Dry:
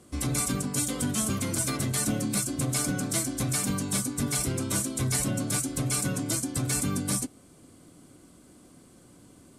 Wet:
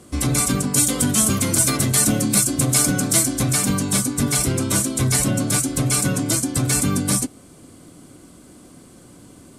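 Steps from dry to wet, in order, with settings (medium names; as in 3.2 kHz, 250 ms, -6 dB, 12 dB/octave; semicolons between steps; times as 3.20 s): 0.74–3.37 s: treble shelf 5.8 kHz +5 dB; trim +8.5 dB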